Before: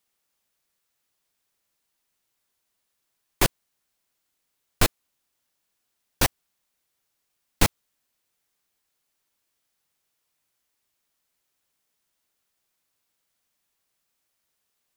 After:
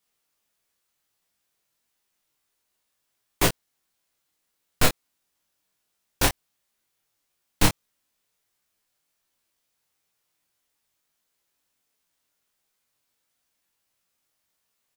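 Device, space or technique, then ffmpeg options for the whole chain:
double-tracked vocal: -filter_complex "[0:a]asplit=2[s0][s1];[s1]adelay=27,volume=0.596[s2];[s0][s2]amix=inputs=2:normalize=0,flanger=delay=16:depth=4.6:speed=1.5,volume=1.33"

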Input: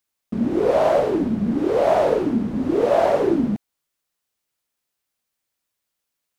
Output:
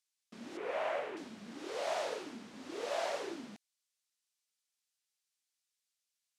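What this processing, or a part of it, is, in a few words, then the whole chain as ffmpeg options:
piezo pickup straight into a mixer: -filter_complex "[0:a]lowpass=6400,aderivative,asettb=1/sr,asplit=3[s0][s1][s2];[s0]atrim=end=0.574[s3];[s1]atrim=start=0.57:end=1.17,asetpts=PTS-STARTPTS,afade=t=in:d=0.004:c=qsin,afade=t=out:st=0.596:d=0.004:c=qsin,highshelf=f=3300:t=q:w=1.5:g=-12[s4];[s2]atrim=start=1.166[s5];[s3][s4]acrossfade=d=0.004:c1=hsin:c2=qsin[s6];[s6][s5]acrossfade=d=0.004:c1=qsin:c2=hsin,volume=1.19"

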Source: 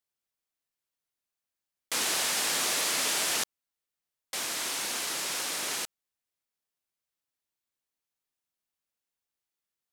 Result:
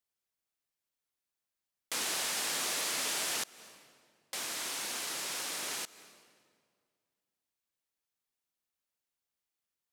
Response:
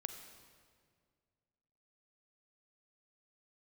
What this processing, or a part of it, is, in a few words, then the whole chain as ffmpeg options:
ducked reverb: -filter_complex "[0:a]asplit=3[s0][s1][s2];[1:a]atrim=start_sample=2205[s3];[s1][s3]afir=irnorm=-1:irlink=0[s4];[s2]apad=whole_len=437809[s5];[s4][s5]sidechaincompress=threshold=0.00708:ratio=8:attack=34:release=198,volume=1.06[s6];[s0][s6]amix=inputs=2:normalize=0,volume=0.473"

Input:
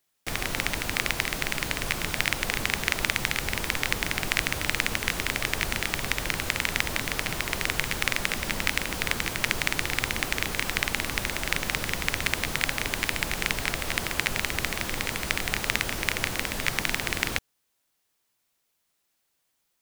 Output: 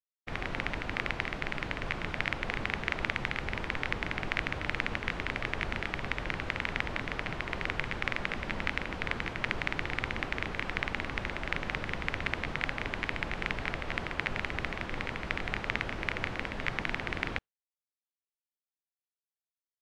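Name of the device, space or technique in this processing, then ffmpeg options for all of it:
hearing-loss simulation: -af "lowpass=2400,agate=range=0.0224:threshold=0.0251:ratio=3:detection=peak,volume=0.668"

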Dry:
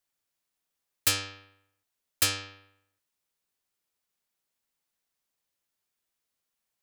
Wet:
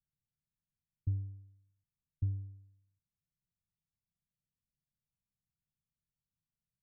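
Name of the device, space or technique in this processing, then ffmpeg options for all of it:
the neighbour's flat through the wall: -af "lowpass=f=170:w=0.5412,lowpass=f=170:w=1.3066,equalizer=f=150:t=o:w=0.77:g=4.5,volume=2.11"

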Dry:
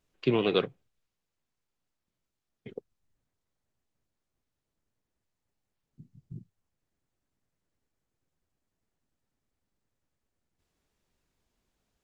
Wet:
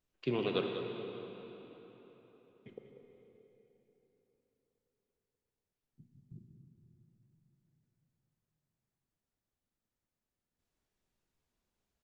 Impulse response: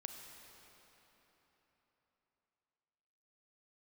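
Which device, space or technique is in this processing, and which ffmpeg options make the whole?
cave: -filter_complex "[0:a]aecho=1:1:191:0.282[s0];[1:a]atrim=start_sample=2205[s1];[s0][s1]afir=irnorm=-1:irlink=0,volume=0.668"

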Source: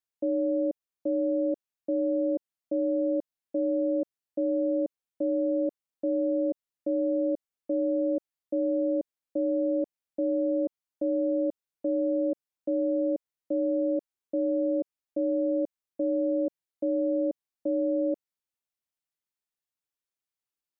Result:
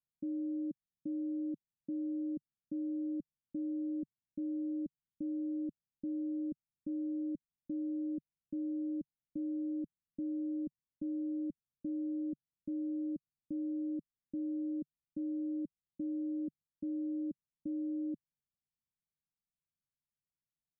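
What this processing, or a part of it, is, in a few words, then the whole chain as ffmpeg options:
the neighbour's flat through the wall: -af "lowpass=f=220:w=0.5412,lowpass=f=220:w=1.3066,equalizer=f=150:t=o:w=0.67:g=5,volume=1.58"

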